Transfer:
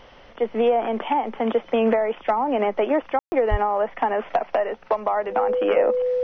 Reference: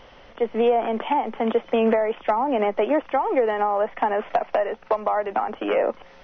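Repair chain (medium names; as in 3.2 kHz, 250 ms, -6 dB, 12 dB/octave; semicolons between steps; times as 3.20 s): band-stop 500 Hz, Q 30; de-plosive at 3.50 s; room tone fill 3.19–3.32 s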